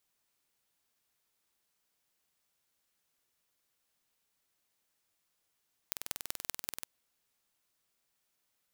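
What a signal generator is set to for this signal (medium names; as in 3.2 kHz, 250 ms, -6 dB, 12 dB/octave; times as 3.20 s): pulse train 20.8 per s, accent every 4, -6 dBFS 0.92 s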